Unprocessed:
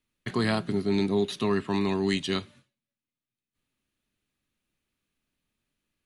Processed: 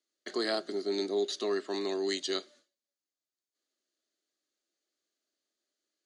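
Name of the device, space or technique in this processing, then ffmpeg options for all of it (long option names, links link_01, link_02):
phone speaker on a table: -af "highpass=frequency=330:width=0.5412,highpass=frequency=330:width=1.3066,equalizer=frequency=340:width_type=q:width=4:gain=5,equalizer=frequency=620:width_type=q:width=4:gain=6,equalizer=frequency=960:width_type=q:width=4:gain=-10,equalizer=frequency=2500:width_type=q:width=4:gain=-10,equalizer=frequency=4600:width_type=q:width=4:gain=9,equalizer=frequency=6600:width_type=q:width=4:gain=9,lowpass=frequency=9000:width=0.5412,lowpass=frequency=9000:width=1.3066,volume=-4dB"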